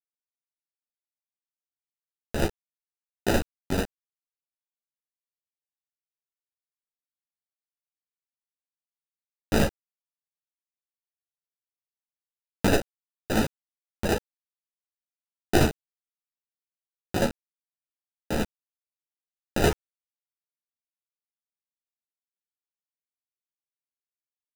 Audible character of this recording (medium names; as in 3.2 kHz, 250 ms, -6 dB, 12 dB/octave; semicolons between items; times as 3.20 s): aliases and images of a low sample rate 1.1 kHz, jitter 0%; random-step tremolo, depth 55%; a quantiser's noise floor 6-bit, dither none; a shimmering, thickened sound